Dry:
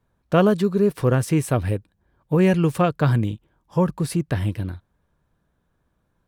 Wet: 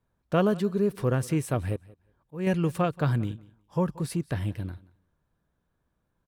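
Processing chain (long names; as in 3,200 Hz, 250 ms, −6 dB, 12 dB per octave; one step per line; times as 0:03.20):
0:01.76–0:02.47: volume swells 275 ms
repeating echo 180 ms, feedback 16%, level −22 dB
level −6.5 dB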